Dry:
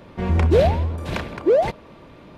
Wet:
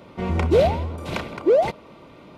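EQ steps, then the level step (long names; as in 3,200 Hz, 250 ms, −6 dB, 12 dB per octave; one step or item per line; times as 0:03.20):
Butterworth band-reject 1,700 Hz, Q 7.6
low-shelf EQ 75 Hz −12 dB
0.0 dB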